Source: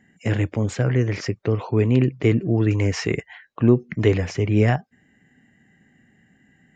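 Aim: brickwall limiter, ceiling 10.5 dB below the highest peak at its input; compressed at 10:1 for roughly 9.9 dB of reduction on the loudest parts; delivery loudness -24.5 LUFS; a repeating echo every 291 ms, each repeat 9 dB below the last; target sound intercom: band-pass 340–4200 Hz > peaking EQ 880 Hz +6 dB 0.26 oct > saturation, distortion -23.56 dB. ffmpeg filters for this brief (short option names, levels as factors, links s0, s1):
-af "acompressor=threshold=0.0891:ratio=10,alimiter=limit=0.075:level=0:latency=1,highpass=340,lowpass=4200,equalizer=f=880:t=o:w=0.26:g=6,aecho=1:1:291|582|873|1164:0.355|0.124|0.0435|0.0152,asoftclip=threshold=0.0562,volume=4.73"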